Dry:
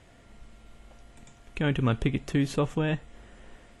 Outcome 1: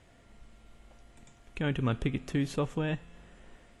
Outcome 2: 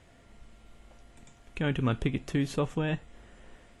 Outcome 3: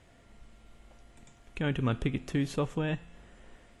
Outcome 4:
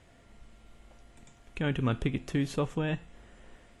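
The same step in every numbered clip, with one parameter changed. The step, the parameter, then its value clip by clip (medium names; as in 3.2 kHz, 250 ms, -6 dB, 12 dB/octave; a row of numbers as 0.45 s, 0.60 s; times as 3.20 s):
feedback comb, decay: 2.1 s, 0.18 s, 0.98 s, 0.45 s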